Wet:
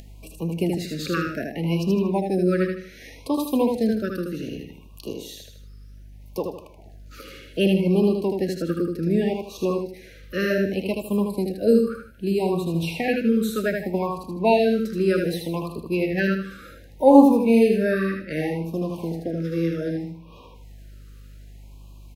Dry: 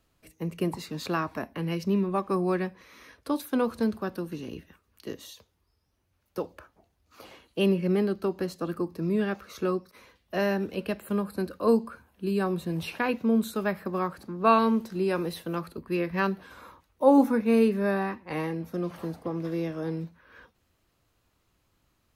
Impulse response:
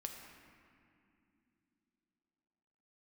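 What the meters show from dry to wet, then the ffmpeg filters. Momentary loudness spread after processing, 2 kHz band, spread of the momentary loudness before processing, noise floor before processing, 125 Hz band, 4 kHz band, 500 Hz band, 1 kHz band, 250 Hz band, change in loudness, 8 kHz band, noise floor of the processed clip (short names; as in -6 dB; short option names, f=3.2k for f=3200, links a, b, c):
16 LU, +4.5 dB, 14 LU, -72 dBFS, +6.0 dB, +6.0 dB, +6.0 dB, +1.5 dB, +5.5 dB, +5.5 dB, +6.0 dB, -46 dBFS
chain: -filter_complex "[0:a]aeval=exprs='val(0)+0.00112*(sin(2*PI*50*n/s)+sin(2*PI*2*50*n/s)/2+sin(2*PI*3*50*n/s)/3+sin(2*PI*4*50*n/s)/4+sin(2*PI*5*50*n/s)/5)':c=same,aecho=1:1:78|156|234|312:0.631|0.221|0.0773|0.0271,acrossover=split=3400[a][b];[b]volume=32.5dB,asoftclip=hard,volume=-32.5dB[c];[a][c]amix=inputs=2:normalize=0,aeval=exprs='0.501*(cos(1*acos(clip(val(0)/0.501,-1,1)))-cos(1*PI/2))+0.0158*(cos(3*acos(clip(val(0)/0.501,-1,1)))-cos(3*PI/2))':c=same,acompressor=mode=upward:threshold=-39dB:ratio=2.5,afftfilt=real='re*(1-between(b*sr/1024,810*pow(1700/810,0.5+0.5*sin(2*PI*0.65*pts/sr))/1.41,810*pow(1700/810,0.5+0.5*sin(2*PI*0.65*pts/sr))*1.41))':imag='im*(1-between(b*sr/1024,810*pow(1700/810,0.5+0.5*sin(2*PI*0.65*pts/sr))/1.41,810*pow(1700/810,0.5+0.5*sin(2*PI*0.65*pts/sr))*1.41))':win_size=1024:overlap=0.75,volume=5dB"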